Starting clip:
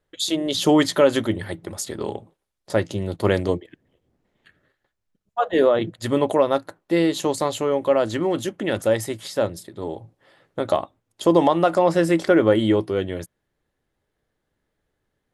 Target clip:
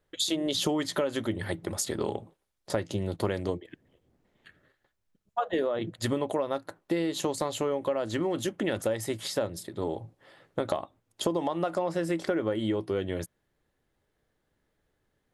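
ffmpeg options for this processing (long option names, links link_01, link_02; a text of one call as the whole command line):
ffmpeg -i in.wav -af "acompressor=threshold=-25dB:ratio=10" out.wav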